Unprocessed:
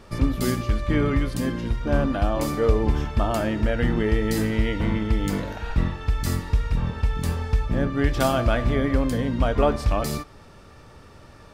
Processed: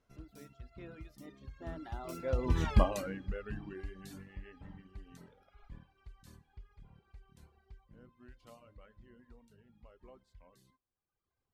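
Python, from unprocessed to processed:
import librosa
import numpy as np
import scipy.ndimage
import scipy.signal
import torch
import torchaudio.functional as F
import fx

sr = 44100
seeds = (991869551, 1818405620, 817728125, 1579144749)

y = fx.doppler_pass(x, sr, speed_mps=46, closest_m=4.7, pass_at_s=2.71)
y = fx.dereverb_blind(y, sr, rt60_s=1.2)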